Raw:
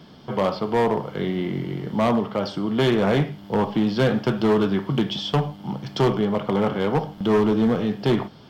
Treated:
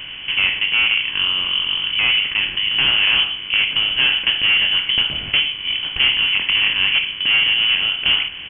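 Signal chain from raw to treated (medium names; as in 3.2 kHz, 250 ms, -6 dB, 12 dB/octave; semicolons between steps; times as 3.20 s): spectral levelling over time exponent 0.6; doubling 21 ms -12 dB; frequency inversion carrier 3.2 kHz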